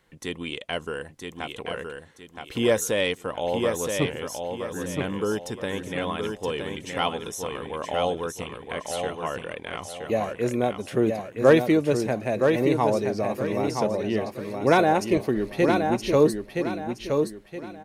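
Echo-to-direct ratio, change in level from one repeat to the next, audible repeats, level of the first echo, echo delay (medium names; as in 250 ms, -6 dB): -4.5 dB, -9.5 dB, 4, -5.0 dB, 970 ms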